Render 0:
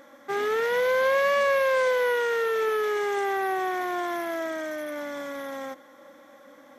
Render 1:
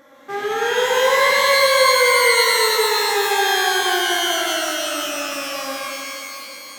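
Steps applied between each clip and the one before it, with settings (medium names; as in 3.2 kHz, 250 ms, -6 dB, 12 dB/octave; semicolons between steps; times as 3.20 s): pitch-shifted reverb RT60 2.8 s, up +12 st, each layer -2 dB, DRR -3 dB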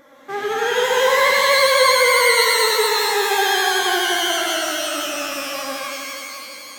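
vibrato 12 Hz 38 cents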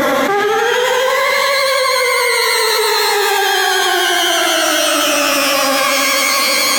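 level flattener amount 100%; trim -2 dB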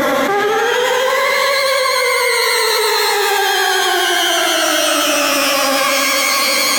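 algorithmic reverb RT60 3.9 s, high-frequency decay 1×, pre-delay 60 ms, DRR 12 dB; trim -1 dB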